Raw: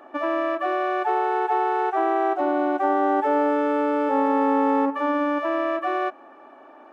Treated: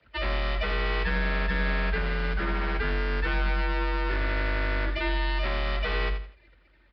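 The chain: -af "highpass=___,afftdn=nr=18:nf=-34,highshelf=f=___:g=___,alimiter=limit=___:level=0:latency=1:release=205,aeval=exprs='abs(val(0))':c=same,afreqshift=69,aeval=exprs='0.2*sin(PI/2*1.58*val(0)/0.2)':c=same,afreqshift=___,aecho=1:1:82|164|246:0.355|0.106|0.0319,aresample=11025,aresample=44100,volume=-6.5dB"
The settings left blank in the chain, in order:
590, 2400, 10.5, -16dB, -23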